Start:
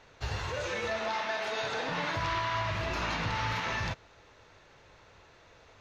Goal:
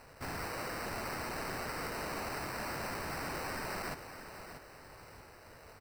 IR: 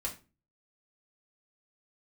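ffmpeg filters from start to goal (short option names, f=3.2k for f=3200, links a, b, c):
-filter_complex "[0:a]lowpass=7.5k,acrusher=samples=13:mix=1:aa=0.000001,aeval=exprs='0.0141*(abs(mod(val(0)/0.0141+3,4)-2)-1)':c=same,asplit=2[a][b];[b]aecho=0:1:635|1270|1905|2540:0.299|0.113|0.0431|0.0164[c];[a][c]amix=inputs=2:normalize=0,volume=2dB"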